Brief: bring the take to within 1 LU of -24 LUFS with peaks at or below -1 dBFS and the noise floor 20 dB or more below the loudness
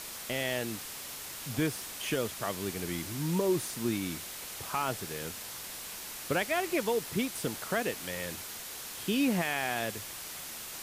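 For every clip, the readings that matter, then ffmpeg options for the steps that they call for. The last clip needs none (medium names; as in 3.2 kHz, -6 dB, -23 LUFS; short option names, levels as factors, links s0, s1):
noise floor -43 dBFS; noise floor target -54 dBFS; loudness -33.5 LUFS; peak level -17.5 dBFS; loudness target -24.0 LUFS
-> -af "afftdn=nr=11:nf=-43"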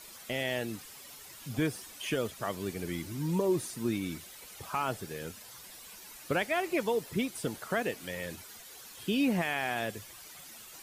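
noise floor -50 dBFS; noise floor target -54 dBFS
-> -af "afftdn=nr=6:nf=-50"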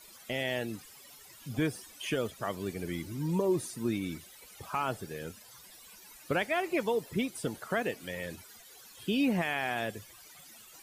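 noise floor -54 dBFS; loudness -33.5 LUFS; peak level -19.0 dBFS; loudness target -24.0 LUFS
-> -af "volume=2.99"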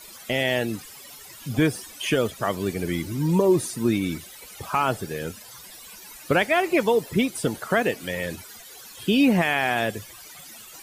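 loudness -24.0 LUFS; peak level -9.5 dBFS; noise floor -44 dBFS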